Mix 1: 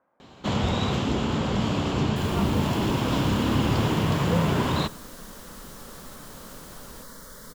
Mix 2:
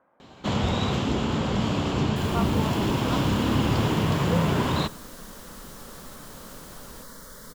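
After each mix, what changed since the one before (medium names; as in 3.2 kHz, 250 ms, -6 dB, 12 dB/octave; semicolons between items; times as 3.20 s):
speech +5.5 dB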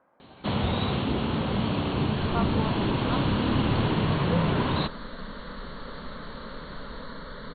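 first sound: send off; second sound +6.5 dB; master: add brick-wall FIR low-pass 4.5 kHz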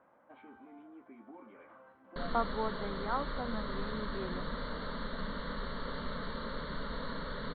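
first sound: muted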